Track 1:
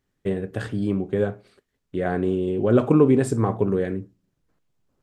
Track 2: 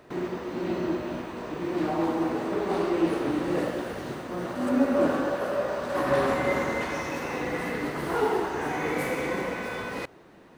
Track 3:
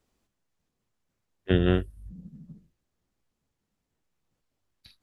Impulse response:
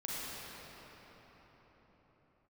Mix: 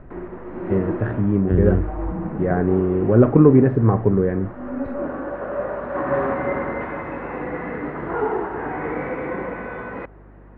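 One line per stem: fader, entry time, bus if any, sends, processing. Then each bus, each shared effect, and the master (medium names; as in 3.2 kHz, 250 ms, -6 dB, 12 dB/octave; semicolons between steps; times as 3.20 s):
+2.0 dB, 0.45 s, no send, bass shelf 160 Hz +8 dB
+2.5 dB, 0.00 s, no send, auto duck -7 dB, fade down 0.30 s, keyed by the third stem
-5.0 dB, 0.00 s, no send, tilt EQ -3 dB/octave; level flattener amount 50%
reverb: none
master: low-pass 1.9 kHz 24 dB/octave; hum 50 Hz, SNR 25 dB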